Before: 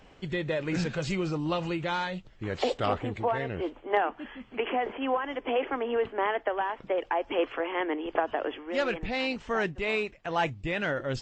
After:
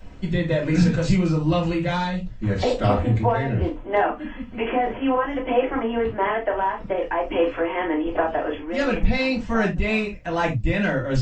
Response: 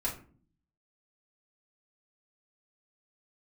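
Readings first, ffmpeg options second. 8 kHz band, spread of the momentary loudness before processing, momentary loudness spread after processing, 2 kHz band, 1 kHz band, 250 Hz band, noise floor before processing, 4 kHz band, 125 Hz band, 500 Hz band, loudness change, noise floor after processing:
n/a, 4 LU, 6 LU, +5.0 dB, +5.5 dB, +10.5 dB, -55 dBFS, +3.0 dB, +13.5 dB, +6.0 dB, +7.5 dB, -37 dBFS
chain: -filter_complex "[0:a]bass=f=250:g=9,treble=f=4k:g=5[a];[1:a]atrim=start_sample=2205,atrim=end_sample=3969[b];[a][b]afir=irnorm=-1:irlink=0"

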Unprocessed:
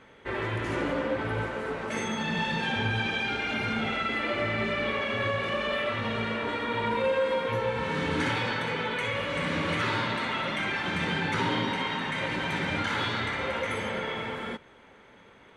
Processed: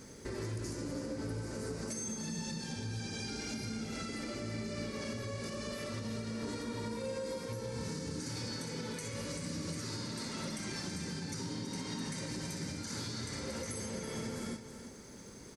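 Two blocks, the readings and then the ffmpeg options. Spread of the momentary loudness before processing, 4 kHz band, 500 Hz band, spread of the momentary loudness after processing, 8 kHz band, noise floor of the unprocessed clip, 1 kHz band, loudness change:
4 LU, -10.0 dB, -11.5 dB, 1 LU, +6.5 dB, -54 dBFS, -18.0 dB, -10.5 dB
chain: -af "firequalizer=gain_entry='entry(240,0);entry(730,-13);entry(3300,-14);entry(4800,13)':delay=0.05:min_phase=1,acompressor=threshold=-40dB:ratio=6,alimiter=level_in=14dB:limit=-24dB:level=0:latency=1:release=365,volume=-14dB,aecho=1:1:328:0.335,volume=7.5dB"

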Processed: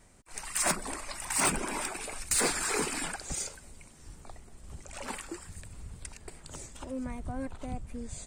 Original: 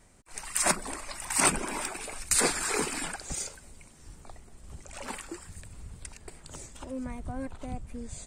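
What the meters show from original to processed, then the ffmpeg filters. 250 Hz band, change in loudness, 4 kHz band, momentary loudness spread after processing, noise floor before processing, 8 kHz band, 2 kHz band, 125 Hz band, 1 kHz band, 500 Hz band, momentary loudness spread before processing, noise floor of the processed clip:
-1.0 dB, -2.5 dB, -1.5 dB, 21 LU, -55 dBFS, -2.0 dB, -1.5 dB, -0.5 dB, -2.0 dB, -1.5 dB, 21 LU, -55 dBFS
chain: -af "asoftclip=type=tanh:threshold=-20dB"

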